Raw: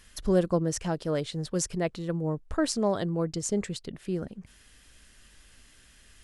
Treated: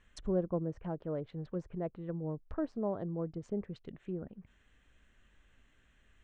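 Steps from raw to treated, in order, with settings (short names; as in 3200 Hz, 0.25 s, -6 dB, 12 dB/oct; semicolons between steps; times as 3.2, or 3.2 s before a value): Wiener smoothing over 9 samples; treble ducked by the level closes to 990 Hz, closed at -26.5 dBFS; elliptic low-pass 9100 Hz; gain -7 dB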